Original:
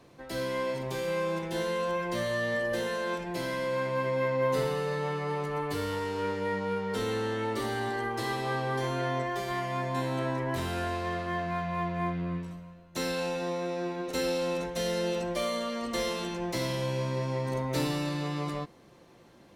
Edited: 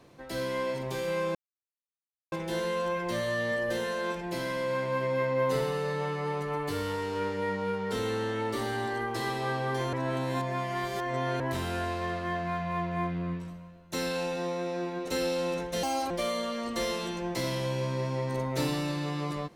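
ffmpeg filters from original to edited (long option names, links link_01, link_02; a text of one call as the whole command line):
ffmpeg -i in.wav -filter_complex "[0:a]asplit=6[link_01][link_02][link_03][link_04][link_05][link_06];[link_01]atrim=end=1.35,asetpts=PTS-STARTPTS,afade=type=out:start_time=1.346:duration=0.004:curve=hsin,apad=pad_dur=0.97[link_07];[link_02]atrim=start=1.35:end=8.962,asetpts=PTS-STARTPTS,afade=type=in:duration=0.004:curve=hsin[link_08];[link_03]atrim=start=8.958:end=10.432,asetpts=PTS-STARTPTS,areverse[link_09];[link_04]atrim=start=10.428:end=14.864[link_10];[link_05]atrim=start=14.86:end=15.28,asetpts=PTS-STARTPTS,asetrate=67473,aresample=44100[link_11];[link_06]atrim=start=15.276[link_12];[link_07][link_08]concat=n=2:v=0:a=1[link_13];[link_13][link_09]acrossfade=duration=0.004:curve1=hsin:curve2=hsin[link_14];[link_14][link_10]acrossfade=duration=0.004:curve1=hsin:curve2=hsin[link_15];[link_15][link_11]acrossfade=duration=0.004:curve1=hsin:curve2=hsin[link_16];[link_16][link_12]acrossfade=duration=0.004:curve1=hsin:curve2=hsin" out.wav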